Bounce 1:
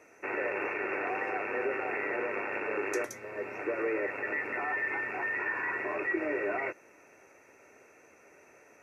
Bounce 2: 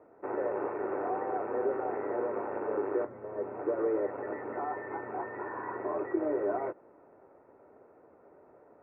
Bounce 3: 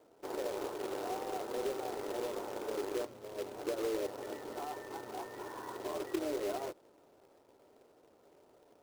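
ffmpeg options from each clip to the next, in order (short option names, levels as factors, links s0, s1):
-af "lowpass=f=1100:w=0.5412,lowpass=f=1100:w=1.3066,volume=1.33"
-af "highshelf=f=2100:g=-9,acrusher=bits=2:mode=log:mix=0:aa=0.000001,volume=0.531"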